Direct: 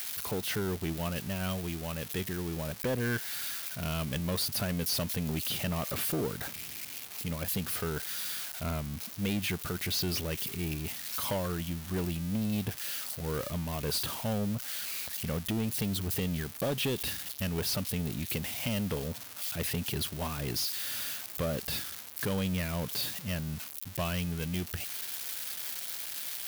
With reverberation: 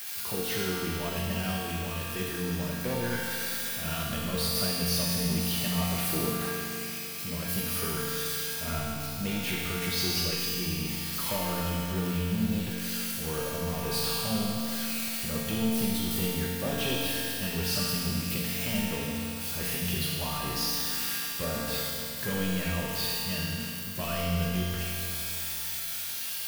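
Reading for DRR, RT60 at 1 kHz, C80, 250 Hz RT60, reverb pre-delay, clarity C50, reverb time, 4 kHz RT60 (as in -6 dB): -7.5 dB, 2.9 s, -1.5 dB, 2.9 s, 4 ms, -3.5 dB, 2.9 s, 2.8 s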